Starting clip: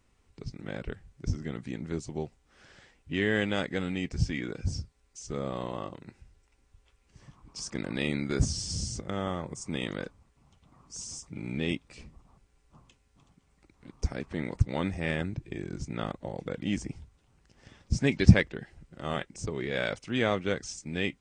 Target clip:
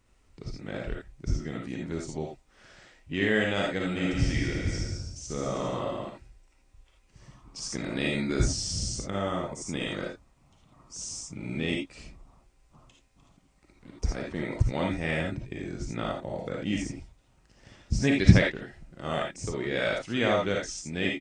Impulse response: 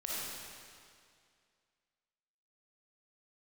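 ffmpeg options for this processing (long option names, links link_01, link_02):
-filter_complex "[0:a]asplit=3[link_01][link_02][link_03];[link_01]afade=type=out:start_time=3.95:duration=0.02[link_04];[link_02]aecho=1:1:140|252|341.6|413.3|470.6:0.631|0.398|0.251|0.158|0.1,afade=type=in:start_time=3.95:duration=0.02,afade=type=out:start_time=6.08:duration=0.02[link_05];[link_03]afade=type=in:start_time=6.08:duration=0.02[link_06];[link_04][link_05][link_06]amix=inputs=3:normalize=0[link_07];[1:a]atrim=start_sample=2205,atrim=end_sample=3969[link_08];[link_07][link_08]afir=irnorm=-1:irlink=0,volume=3.5dB"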